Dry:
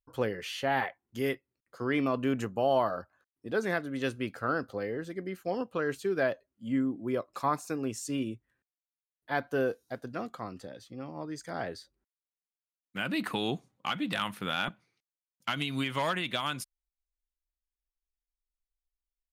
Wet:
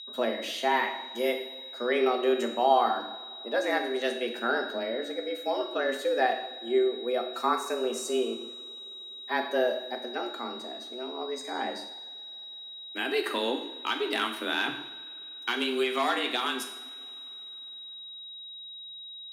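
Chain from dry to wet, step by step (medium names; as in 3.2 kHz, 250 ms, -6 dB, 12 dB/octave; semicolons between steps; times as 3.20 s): two-slope reverb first 0.74 s, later 3.4 s, from -20 dB, DRR 4 dB; whistle 3.7 kHz -42 dBFS; frequency shift +120 Hz; trim +1.5 dB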